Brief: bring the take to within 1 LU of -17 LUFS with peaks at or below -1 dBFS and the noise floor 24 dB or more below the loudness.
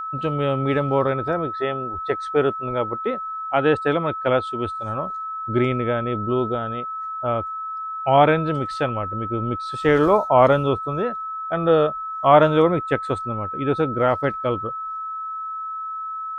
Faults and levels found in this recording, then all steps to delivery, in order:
steady tone 1300 Hz; tone level -27 dBFS; loudness -22.0 LUFS; peak -1.5 dBFS; loudness target -17.0 LUFS
-> notch 1300 Hz, Q 30; gain +5 dB; limiter -1 dBFS

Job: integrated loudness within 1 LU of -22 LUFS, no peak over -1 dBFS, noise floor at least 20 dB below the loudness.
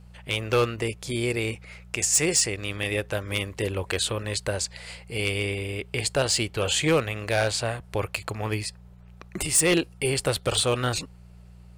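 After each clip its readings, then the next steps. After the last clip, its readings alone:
clipped 0.2%; flat tops at -14.5 dBFS; hum 60 Hz; harmonics up to 180 Hz; hum level -46 dBFS; loudness -25.5 LUFS; peak -14.5 dBFS; loudness target -22.0 LUFS
-> clip repair -14.5 dBFS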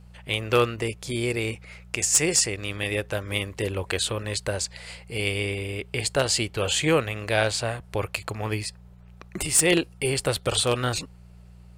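clipped 0.0%; hum 60 Hz; harmonics up to 180 Hz; hum level -46 dBFS
-> de-hum 60 Hz, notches 3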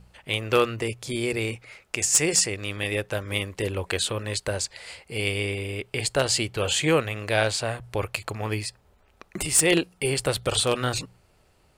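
hum none; loudness -25.5 LUFS; peak -5.5 dBFS; loudness target -22.0 LUFS
-> gain +3.5 dB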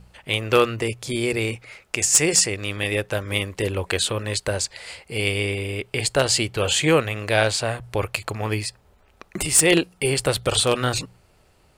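loudness -22.0 LUFS; peak -2.0 dBFS; noise floor -58 dBFS

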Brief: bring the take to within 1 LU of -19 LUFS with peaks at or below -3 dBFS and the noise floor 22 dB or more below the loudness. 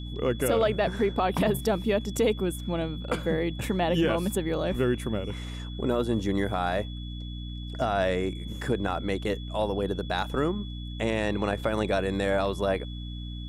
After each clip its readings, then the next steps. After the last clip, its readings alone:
hum 60 Hz; harmonics up to 300 Hz; hum level -34 dBFS; steady tone 3400 Hz; tone level -45 dBFS; loudness -28.5 LUFS; peak -14.0 dBFS; loudness target -19.0 LUFS
-> notches 60/120/180/240/300 Hz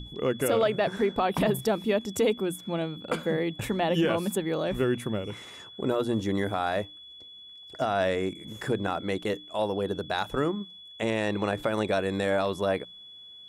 hum none; steady tone 3400 Hz; tone level -45 dBFS
-> notch 3400 Hz, Q 30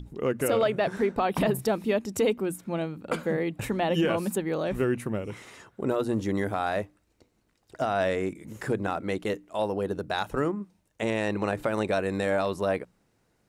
steady tone none; loudness -28.5 LUFS; peak -14.5 dBFS; loudness target -19.0 LUFS
-> gain +9.5 dB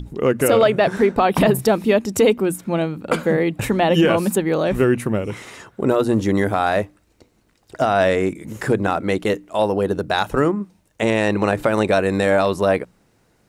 loudness -19.0 LUFS; peak -5.0 dBFS; noise floor -61 dBFS

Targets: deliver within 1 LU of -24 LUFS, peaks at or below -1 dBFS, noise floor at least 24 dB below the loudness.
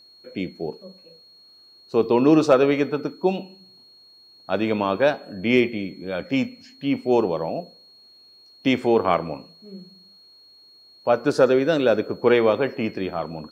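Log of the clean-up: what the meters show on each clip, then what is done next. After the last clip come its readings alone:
steady tone 4300 Hz; tone level -49 dBFS; loudness -22.0 LUFS; peak -5.5 dBFS; loudness target -24.0 LUFS
-> notch 4300 Hz, Q 30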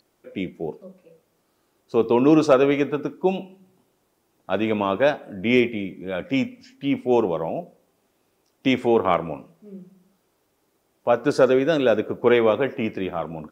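steady tone none; loudness -22.0 LUFS; peak -5.5 dBFS; loudness target -24.0 LUFS
-> gain -2 dB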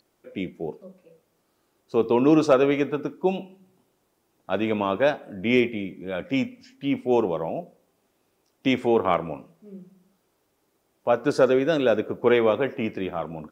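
loudness -24.0 LUFS; peak -7.5 dBFS; noise floor -71 dBFS

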